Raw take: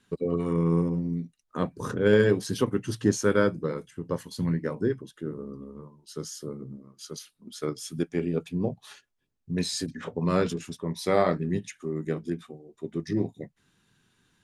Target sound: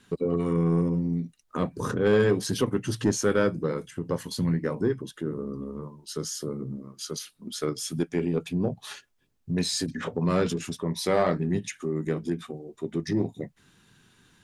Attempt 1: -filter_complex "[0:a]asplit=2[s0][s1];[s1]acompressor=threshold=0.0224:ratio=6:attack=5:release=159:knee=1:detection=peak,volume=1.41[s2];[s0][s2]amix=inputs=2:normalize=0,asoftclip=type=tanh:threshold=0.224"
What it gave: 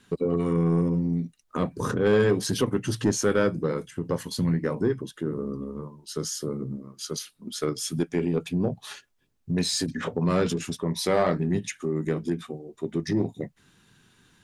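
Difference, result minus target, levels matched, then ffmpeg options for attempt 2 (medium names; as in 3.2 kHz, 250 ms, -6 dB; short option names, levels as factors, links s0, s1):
compression: peak gain reduction -5 dB
-filter_complex "[0:a]asplit=2[s0][s1];[s1]acompressor=threshold=0.0112:ratio=6:attack=5:release=159:knee=1:detection=peak,volume=1.41[s2];[s0][s2]amix=inputs=2:normalize=0,asoftclip=type=tanh:threshold=0.224"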